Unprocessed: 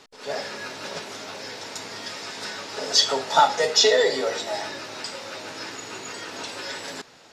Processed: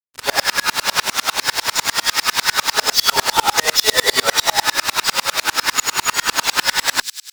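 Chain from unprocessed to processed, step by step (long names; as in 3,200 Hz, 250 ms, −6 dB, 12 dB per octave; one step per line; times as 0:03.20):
low shelf with overshoot 720 Hz −10.5 dB, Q 1.5
fuzz pedal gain 41 dB, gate −41 dBFS
mains-hum notches 50/100/150/200/250 Hz
on a send: delay with a high-pass on its return 94 ms, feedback 60%, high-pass 4,100 Hz, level −5 dB
on the sum: tremolo with a ramp in dB swelling 10 Hz, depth 33 dB
level +6.5 dB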